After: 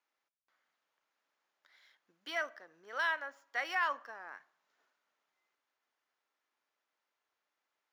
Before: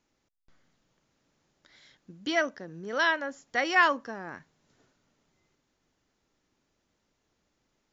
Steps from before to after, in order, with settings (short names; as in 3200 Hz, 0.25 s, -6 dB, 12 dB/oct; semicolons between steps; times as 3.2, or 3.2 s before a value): median filter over 5 samples; HPF 1100 Hz 12 dB/oct; high shelf 2200 Hz -11.5 dB; limiter -23 dBFS, peak gain reduction 7.5 dB; on a send: reverb RT60 0.70 s, pre-delay 3 ms, DRR 17.5 dB